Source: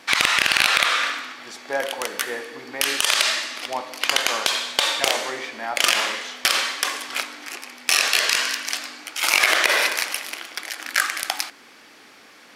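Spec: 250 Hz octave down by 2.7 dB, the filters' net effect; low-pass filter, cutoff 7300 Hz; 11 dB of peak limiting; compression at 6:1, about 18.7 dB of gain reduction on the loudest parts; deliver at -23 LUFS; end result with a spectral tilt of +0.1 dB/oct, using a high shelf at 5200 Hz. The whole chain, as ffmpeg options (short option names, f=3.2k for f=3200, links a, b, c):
-af "lowpass=7.3k,equalizer=f=250:t=o:g=-3.5,highshelf=f=5.2k:g=-3.5,acompressor=threshold=-36dB:ratio=6,volume=16dB,alimiter=limit=-8dB:level=0:latency=1"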